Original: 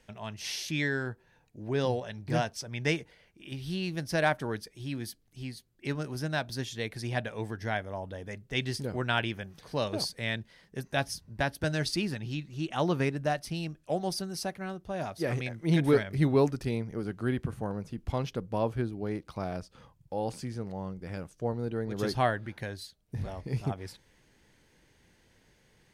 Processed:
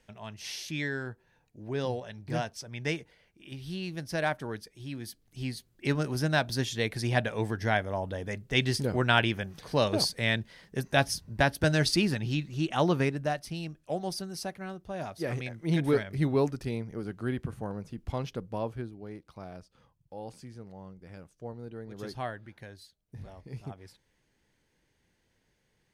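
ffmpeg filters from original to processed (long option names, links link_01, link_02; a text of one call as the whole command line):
ffmpeg -i in.wav -af "volume=5dB,afade=type=in:start_time=5.03:duration=0.46:silence=0.398107,afade=type=out:start_time=12.44:duration=0.95:silence=0.446684,afade=type=out:start_time=18.38:duration=0.63:silence=0.446684" out.wav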